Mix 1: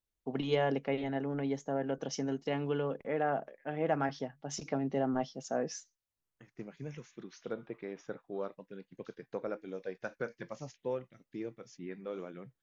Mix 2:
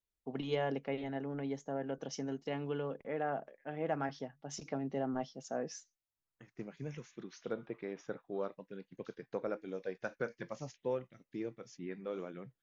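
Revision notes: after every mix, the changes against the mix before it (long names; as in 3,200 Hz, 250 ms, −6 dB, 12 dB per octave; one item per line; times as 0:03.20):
first voice −4.5 dB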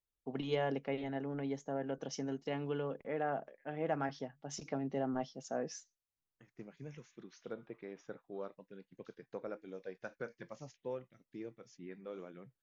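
second voice −5.5 dB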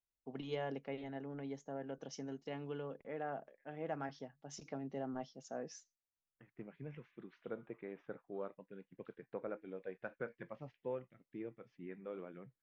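first voice −6.0 dB
second voice: add low-pass filter 2,900 Hz 24 dB per octave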